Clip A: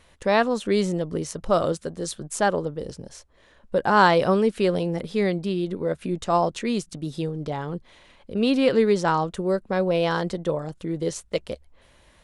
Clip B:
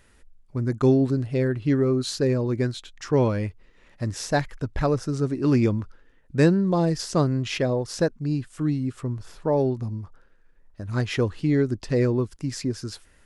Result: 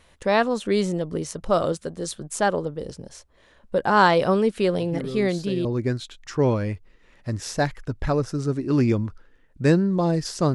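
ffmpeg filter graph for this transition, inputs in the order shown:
-filter_complex "[1:a]asplit=2[a][b];[0:a]apad=whole_dur=10.54,atrim=end=10.54,atrim=end=5.652[c];[b]atrim=start=2.388:end=7.28[d];[a]atrim=start=1.53:end=2.39,asetpts=PTS-STARTPTS,volume=-10.5dB,afade=t=in:d=0.004:c=hsin,afade=t=out:st=0.856:d=0.004:c=hsin,adelay=4790[e];[c][d]acrossfade=d=0.004:c1=hsin:c2=hsin[f];[f][e]amix=inputs=2:normalize=0"

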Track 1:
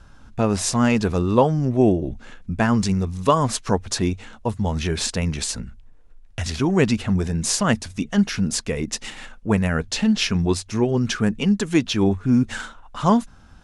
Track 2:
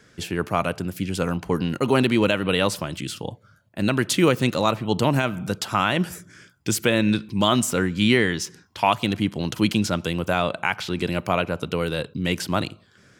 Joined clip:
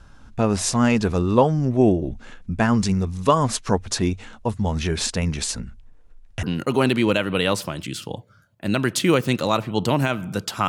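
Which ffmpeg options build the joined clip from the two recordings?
-filter_complex "[0:a]apad=whole_dur=10.68,atrim=end=10.68,atrim=end=6.432[a];[1:a]atrim=start=1.568:end=5.82[b];[a][b]acrossfade=d=0.004:c1=hsin:c2=hsin"

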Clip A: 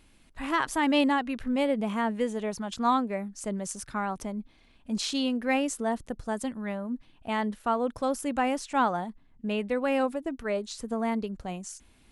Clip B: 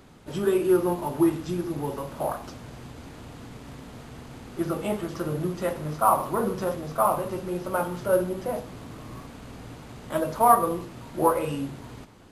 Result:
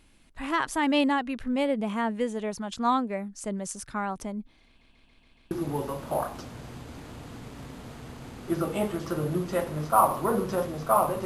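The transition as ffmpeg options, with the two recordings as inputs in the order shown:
-filter_complex "[0:a]apad=whole_dur=11.25,atrim=end=11.25,asplit=6[a][b][c][d][e][f];[a]atrim=end=4.812[g];[b]atrim=start=4.668:end=4.812[h];[c]atrim=start=4.668:end=4.812[i];[d]atrim=start=4.668:end=4.812[j];[e]atrim=start=4.668:end=4.812[k];[f]atrim=start=4.668:end=4.812[l];[1:a]atrim=start=1.598:end=7.34[m];[g][h]acrossfade=d=0.004:c1=hsin:c2=hsin[n];[n][i]acrossfade=d=0.004:c1=hsin:c2=hsin[o];[o][j]acrossfade=d=0.004:c1=hsin:c2=hsin[p];[p][k]acrossfade=d=0.004:c1=hsin:c2=hsin[q];[q][l]acrossfade=d=0.004:c1=hsin:c2=hsin[r];[r][m]acrossfade=d=0.004:c1=hsin:c2=hsin"

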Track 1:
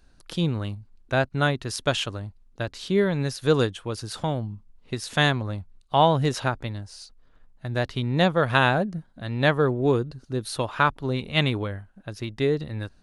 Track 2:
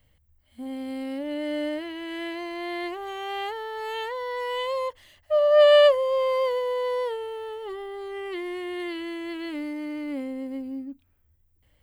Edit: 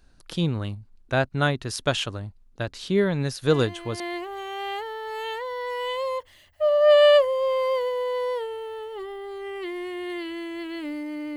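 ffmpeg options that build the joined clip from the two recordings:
-filter_complex "[1:a]asplit=2[a][b];[0:a]apad=whole_dur=11.36,atrim=end=11.36,atrim=end=4.002[c];[b]atrim=start=2.698:end=10.06[d];[a]atrim=start=2.18:end=2.7,asetpts=PTS-STARTPTS,volume=-6.5dB,afade=t=in:d=0.004:c=hsin,afade=t=out:st=0.516:d=0.004:c=hsin,adelay=3480[e];[c][d]acrossfade=d=0.004:c1=hsin:c2=hsin[f];[f][e]amix=inputs=2:normalize=0"

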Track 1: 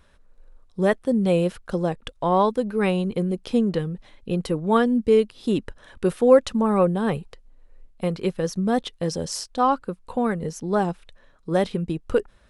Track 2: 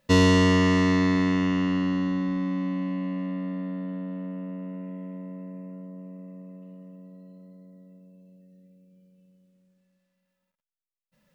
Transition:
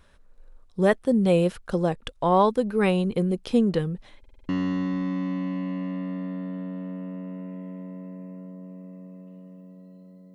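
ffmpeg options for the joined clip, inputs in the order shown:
-filter_complex "[0:a]apad=whole_dur=10.34,atrim=end=10.34,asplit=6[a][b][c][d][e][f];[a]atrim=end=4.242[g];[b]atrim=start=4.188:end=4.242[h];[c]atrim=start=4.188:end=4.242[i];[d]atrim=start=4.188:end=4.242[j];[e]atrim=start=4.188:end=4.242[k];[f]atrim=start=4.188:end=4.242[l];[1:a]atrim=start=1.838:end=7.69[m];[g][h]acrossfade=d=0.004:c1=hsin:c2=hsin[n];[n][i]acrossfade=d=0.004:c1=hsin:c2=hsin[o];[o][j]acrossfade=d=0.004:c1=hsin:c2=hsin[p];[p][k]acrossfade=d=0.004:c1=hsin:c2=hsin[q];[q][l]acrossfade=d=0.004:c1=hsin:c2=hsin[r];[r][m]acrossfade=d=0.004:c1=hsin:c2=hsin"

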